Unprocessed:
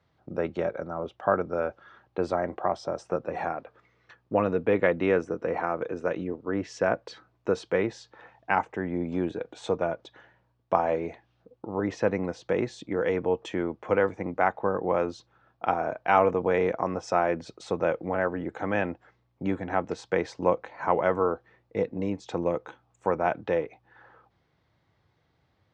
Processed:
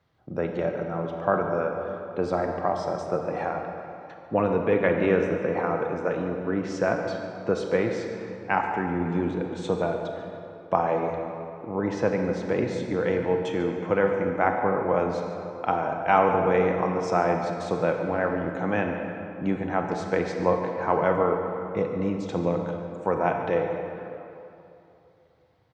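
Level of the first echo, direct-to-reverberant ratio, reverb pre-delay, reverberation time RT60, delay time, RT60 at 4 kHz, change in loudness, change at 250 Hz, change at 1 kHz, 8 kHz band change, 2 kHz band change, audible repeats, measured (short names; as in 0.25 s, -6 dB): -15.0 dB, 3.0 dB, 25 ms, 2.9 s, 0.144 s, 1.8 s, +2.0 dB, +3.5 dB, +2.5 dB, n/a, +2.0 dB, 1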